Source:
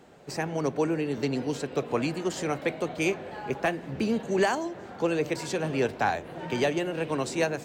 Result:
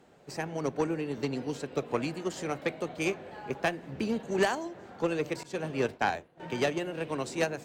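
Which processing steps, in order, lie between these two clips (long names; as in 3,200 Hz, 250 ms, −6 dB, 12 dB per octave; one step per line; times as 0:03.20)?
0:05.43–0:06.40: downward expander −28 dBFS
harmonic generator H 3 −16 dB, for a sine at −14 dBFS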